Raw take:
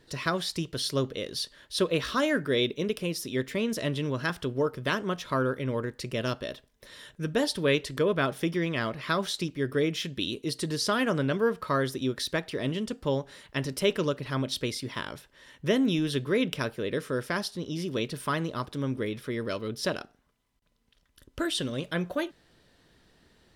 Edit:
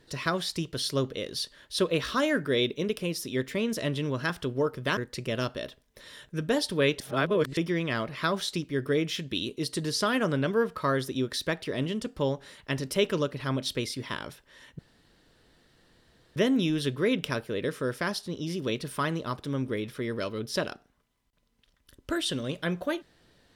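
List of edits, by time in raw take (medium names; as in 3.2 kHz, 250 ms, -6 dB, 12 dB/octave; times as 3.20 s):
4.97–5.83 s: delete
7.86–8.43 s: reverse
15.65 s: insert room tone 1.57 s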